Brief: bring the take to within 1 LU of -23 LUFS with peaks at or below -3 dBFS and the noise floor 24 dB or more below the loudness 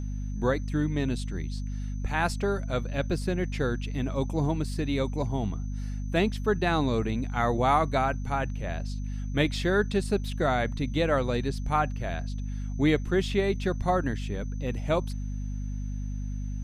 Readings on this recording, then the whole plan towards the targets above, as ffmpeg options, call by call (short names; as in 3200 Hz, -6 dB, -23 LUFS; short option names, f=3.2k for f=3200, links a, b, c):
hum 50 Hz; harmonics up to 250 Hz; hum level -30 dBFS; steady tone 6100 Hz; tone level -57 dBFS; loudness -29.0 LUFS; peak -11.5 dBFS; loudness target -23.0 LUFS
-> -af "bandreject=f=50:t=h:w=6,bandreject=f=100:t=h:w=6,bandreject=f=150:t=h:w=6,bandreject=f=200:t=h:w=6,bandreject=f=250:t=h:w=6"
-af "bandreject=f=6.1k:w=30"
-af "volume=6dB"